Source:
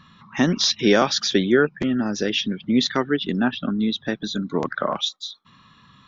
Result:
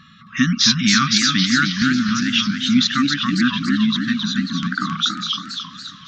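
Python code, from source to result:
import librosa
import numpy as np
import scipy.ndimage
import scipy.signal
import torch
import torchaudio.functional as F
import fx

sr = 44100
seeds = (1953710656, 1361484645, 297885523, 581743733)

y = fx.brickwall_bandstop(x, sr, low_hz=280.0, high_hz=1100.0)
y = fx.low_shelf(y, sr, hz=74.0, db=-10.0)
y = fx.echo_thinned(y, sr, ms=361, feedback_pct=80, hz=420.0, wet_db=-23)
y = fx.echo_warbled(y, sr, ms=275, feedback_pct=53, rate_hz=2.8, cents=206, wet_db=-4.5)
y = y * librosa.db_to_amplitude(5.0)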